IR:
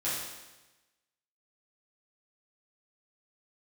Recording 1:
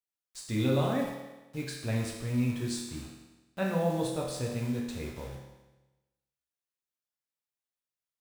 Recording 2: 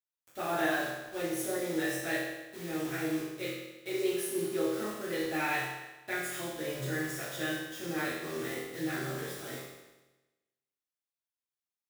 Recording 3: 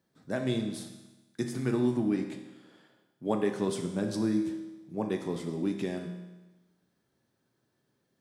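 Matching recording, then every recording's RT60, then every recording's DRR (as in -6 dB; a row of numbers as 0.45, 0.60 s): 2; 1.1, 1.1, 1.1 s; -2.0, -10.5, 3.5 dB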